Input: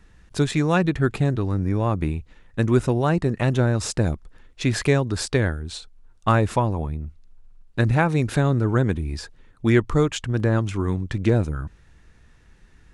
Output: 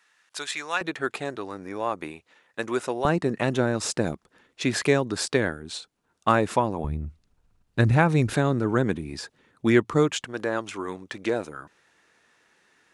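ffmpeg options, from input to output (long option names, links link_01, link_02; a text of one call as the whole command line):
ffmpeg -i in.wav -af "asetnsamples=nb_out_samples=441:pad=0,asendcmd='0.81 highpass f 500;3.05 highpass f 210;6.84 highpass f 55;8.33 highpass f 180;10.25 highpass f 440',highpass=1100" out.wav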